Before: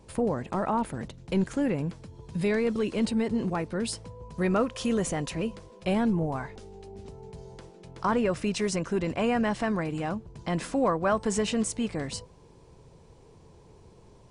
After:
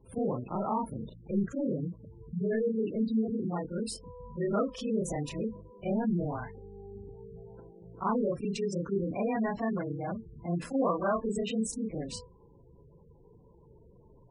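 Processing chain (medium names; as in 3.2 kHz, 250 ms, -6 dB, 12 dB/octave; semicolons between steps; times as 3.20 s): short-time spectra conjugated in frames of 81 ms; spectral gate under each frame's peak -15 dB strong; AAC 192 kbps 48 kHz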